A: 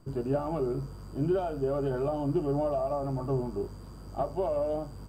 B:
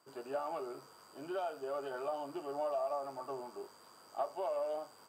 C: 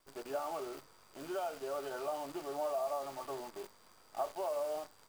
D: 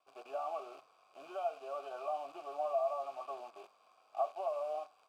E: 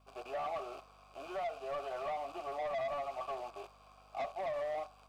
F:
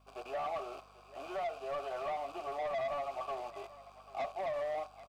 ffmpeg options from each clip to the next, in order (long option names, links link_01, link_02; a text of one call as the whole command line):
ffmpeg -i in.wav -af "highpass=760,volume=-1dB" out.wav
ffmpeg -i in.wav -af "acrusher=bits=9:dc=4:mix=0:aa=0.000001" out.wav
ffmpeg -i in.wav -filter_complex "[0:a]asplit=3[link_01][link_02][link_03];[link_01]bandpass=frequency=730:width_type=q:width=8,volume=0dB[link_04];[link_02]bandpass=frequency=1090:width_type=q:width=8,volume=-6dB[link_05];[link_03]bandpass=frequency=2440:width_type=q:width=8,volume=-9dB[link_06];[link_04][link_05][link_06]amix=inputs=3:normalize=0,highshelf=frequency=2900:gain=8.5,bandreject=frequency=720:width=23,volume=7dB" out.wav
ffmpeg -i in.wav -filter_complex "[0:a]asplit=2[link_01][link_02];[link_02]alimiter=level_in=8.5dB:limit=-24dB:level=0:latency=1:release=256,volume=-8.5dB,volume=2dB[link_03];[link_01][link_03]amix=inputs=2:normalize=0,asoftclip=type=tanh:threshold=-32.5dB,aeval=exprs='val(0)+0.000562*(sin(2*PI*50*n/s)+sin(2*PI*2*50*n/s)/2+sin(2*PI*3*50*n/s)/3+sin(2*PI*4*50*n/s)/4+sin(2*PI*5*50*n/s)/5)':channel_layout=same,volume=-1dB" out.wav
ffmpeg -i in.wav -af "aecho=1:1:790:0.133,volume=1dB" out.wav